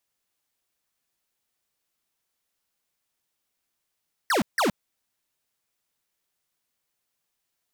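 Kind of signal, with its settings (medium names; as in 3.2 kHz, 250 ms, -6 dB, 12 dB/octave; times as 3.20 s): burst of laser zaps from 2 kHz, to 170 Hz, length 0.12 s square, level -22 dB, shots 2, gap 0.16 s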